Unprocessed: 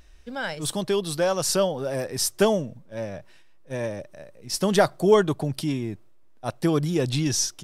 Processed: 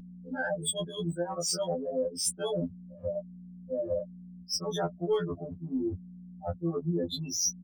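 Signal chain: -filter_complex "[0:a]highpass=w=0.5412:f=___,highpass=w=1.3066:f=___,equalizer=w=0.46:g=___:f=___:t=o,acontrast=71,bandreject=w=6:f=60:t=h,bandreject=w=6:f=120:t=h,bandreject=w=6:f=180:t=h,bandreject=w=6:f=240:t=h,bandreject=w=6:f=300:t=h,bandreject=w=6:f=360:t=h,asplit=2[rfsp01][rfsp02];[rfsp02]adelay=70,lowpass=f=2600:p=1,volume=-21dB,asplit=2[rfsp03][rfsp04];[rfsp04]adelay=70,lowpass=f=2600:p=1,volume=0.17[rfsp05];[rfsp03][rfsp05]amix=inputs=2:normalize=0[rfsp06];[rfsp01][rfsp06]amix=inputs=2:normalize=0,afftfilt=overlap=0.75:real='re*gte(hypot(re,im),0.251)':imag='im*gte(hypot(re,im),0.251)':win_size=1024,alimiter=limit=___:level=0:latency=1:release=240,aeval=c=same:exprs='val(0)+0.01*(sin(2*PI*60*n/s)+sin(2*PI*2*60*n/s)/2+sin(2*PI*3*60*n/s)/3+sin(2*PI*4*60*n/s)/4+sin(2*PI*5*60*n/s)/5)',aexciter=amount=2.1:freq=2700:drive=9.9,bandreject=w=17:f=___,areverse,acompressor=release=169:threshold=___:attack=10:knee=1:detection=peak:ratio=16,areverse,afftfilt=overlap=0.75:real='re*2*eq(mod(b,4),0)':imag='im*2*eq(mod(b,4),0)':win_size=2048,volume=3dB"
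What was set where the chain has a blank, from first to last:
64, 64, -2.5, 220, -9dB, 8000, -29dB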